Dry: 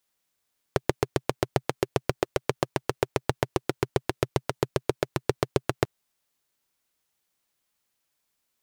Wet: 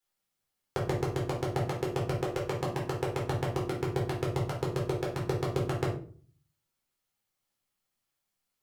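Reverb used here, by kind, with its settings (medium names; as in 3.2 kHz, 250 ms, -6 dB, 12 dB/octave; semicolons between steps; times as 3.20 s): simulated room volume 360 m³, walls furnished, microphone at 4.1 m; trim -11.5 dB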